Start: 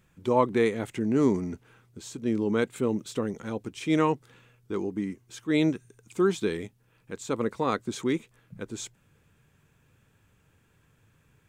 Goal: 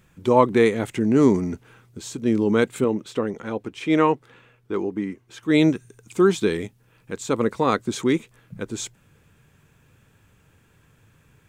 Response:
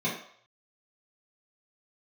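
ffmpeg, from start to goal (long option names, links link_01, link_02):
-filter_complex "[0:a]asettb=1/sr,asplit=3[link_01][link_02][link_03];[link_01]atrim=end=2.844[link_04];[link_02]atrim=start=2.84:end=5.43,asetpts=PTS-STARTPTS,afade=type=in:duration=0.004:curve=qsin,afade=type=out:start_time=2.586:duration=0.004:curve=qsin,bass=frequency=250:gain=-6,treble=frequency=4000:gain=-10[link_05];[link_03]atrim=start=5.426[link_06];[link_04][link_05]acrossfade=duration=0.004:curve1=hsin:curve2=qsin[link_07];[link_07][link_06]acrossfade=duration=0.004:curve1=qsin:curve2=hsin,volume=6.5dB"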